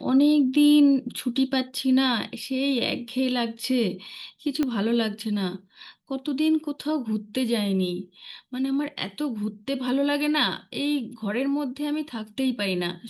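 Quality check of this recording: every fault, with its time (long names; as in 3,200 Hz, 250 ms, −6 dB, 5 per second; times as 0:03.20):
0:04.63: click −13 dBFS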